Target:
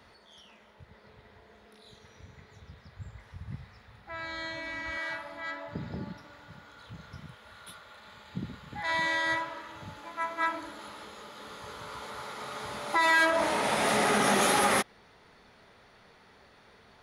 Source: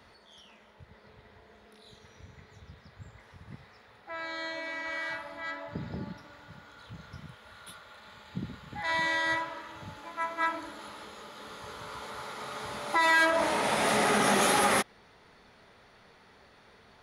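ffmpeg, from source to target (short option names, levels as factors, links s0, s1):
-filter_complex "[0:a]asettb=1/sr,asplit=3[s0][s1][s2];[s0]atrim=end=2.654[s3];[s1]atrim=start=2.65:end=4.97,asetpts=PTS-STARTPTS,afade=t=in:d=0.004:c=qsin,afade=t=out:st=2.316:d=0.004:c=qsin,asubboost=boost=11.5:cutoff=160[s4];[s2]atrim=start=4.966[s5];[s3][s4]acrossfade=d=0.004:c1=hsin:c2=qsin[s6];[s6][s5]acrossfade=d=0.004:c1=qsin:c2=hsin"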